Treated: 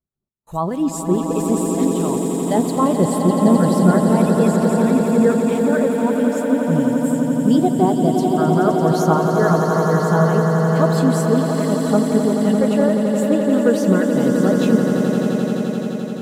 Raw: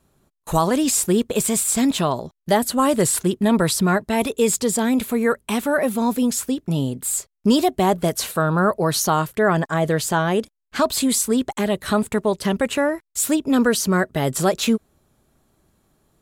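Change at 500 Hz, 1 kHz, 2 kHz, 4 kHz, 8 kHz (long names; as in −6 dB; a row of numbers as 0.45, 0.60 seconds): +4.5, +1.5, −2.5, −7.0, −8.5 decibels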